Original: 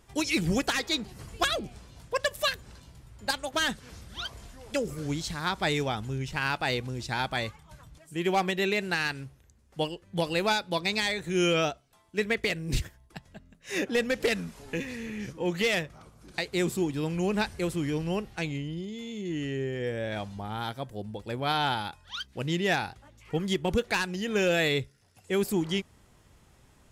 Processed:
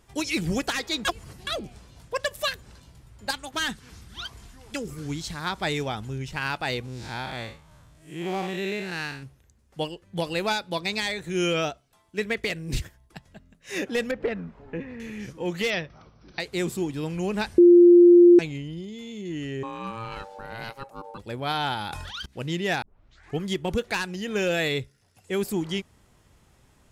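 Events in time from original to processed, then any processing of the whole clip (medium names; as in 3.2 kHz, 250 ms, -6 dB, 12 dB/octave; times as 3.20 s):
1.05–1.47 s: reverse
3.32–5.24 s: peaking EQ 570 Hz -8.5 dB 0.52 oct
6.85–9.23 s: spectral blur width 144 ms
14.11–15.00 s: low-pass 1.5 kHz
15.70–16.40 s: brick-wall FIR low-pass 6.1 kHz
17.58–18.39 s: bleep 349 Hz -9 dBFS
19.63–21.18 s: ring modulator 680 Hz
21.76–22.26 s: decay stretcher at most 24 dB/s
22.82 s: tape start 0.56 s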